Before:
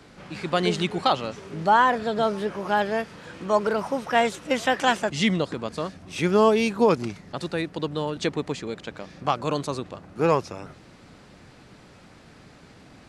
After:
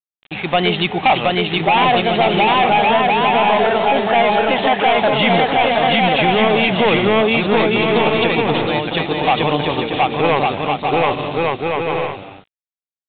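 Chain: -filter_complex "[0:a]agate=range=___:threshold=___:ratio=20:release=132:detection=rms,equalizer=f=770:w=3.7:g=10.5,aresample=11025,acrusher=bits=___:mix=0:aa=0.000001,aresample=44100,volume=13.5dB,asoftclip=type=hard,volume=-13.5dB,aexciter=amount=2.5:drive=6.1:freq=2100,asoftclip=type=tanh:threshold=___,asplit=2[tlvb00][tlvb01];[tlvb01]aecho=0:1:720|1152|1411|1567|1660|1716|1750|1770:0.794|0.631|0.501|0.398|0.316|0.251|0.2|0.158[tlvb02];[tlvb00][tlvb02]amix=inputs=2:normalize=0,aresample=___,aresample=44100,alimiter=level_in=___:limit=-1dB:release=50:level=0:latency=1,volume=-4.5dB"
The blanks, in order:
-16dB, -36dB, 7, -10.5dB, 8000, 11dB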